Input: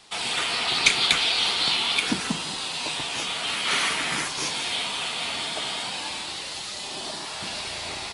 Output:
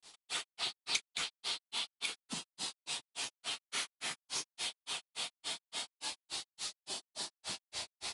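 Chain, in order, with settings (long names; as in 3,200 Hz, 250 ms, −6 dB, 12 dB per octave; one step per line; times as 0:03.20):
granular cloud 162 ms, grains 3.5 per second, pitch spread up and down by 0 semitones
downward compressor 2 to 1, threshold −36 dBFS, peak gain reduction 12 dB
bass and treble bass −4 dB, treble +9 dB
level −6.5 dB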